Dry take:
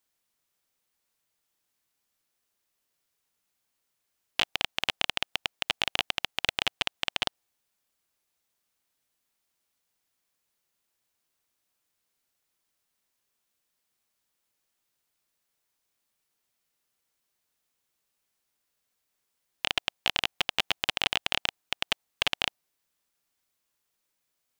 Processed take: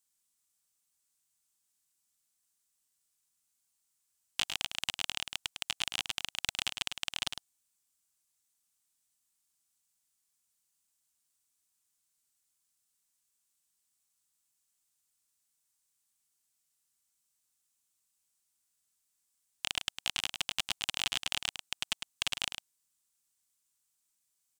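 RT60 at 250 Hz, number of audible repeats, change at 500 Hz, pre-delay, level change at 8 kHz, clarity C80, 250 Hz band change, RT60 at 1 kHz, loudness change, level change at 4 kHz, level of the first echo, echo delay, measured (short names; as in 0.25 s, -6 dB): none, 1, -13.5 dB, none, +3.5 dB, none, -8.5 dB, none, -5.5 dB, -5.0 dB, -7.5 dB, 0.104 s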